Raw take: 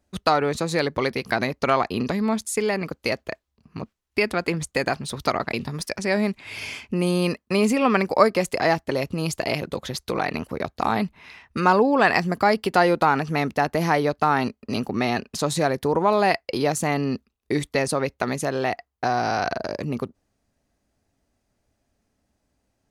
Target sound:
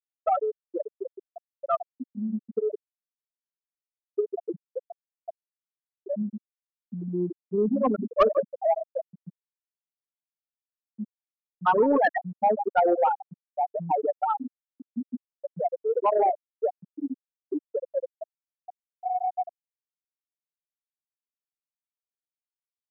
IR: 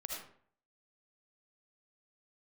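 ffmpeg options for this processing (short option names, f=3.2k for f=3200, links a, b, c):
-filter_complex "[0:a]aecho=1:1:151|302|453|604|755:0.376|0.154|0.0632|0.0259|0.0106,asplit=2[a][b];[1:a]atrim=start_sample=2205,lowpass=5.8k[c];[b][c]afir=irnorm=-1:irlink=0,volume=-4dB[d];[a][d]amix=inputs=2:normalize=0,afftfilt=real='re*gte(hypot(re,im),1)':imag='im*gte(hypot(re,im),1)':win_size=1024:overlap=0.75,highpass=260,acontrast=65,volume=-8.5dB"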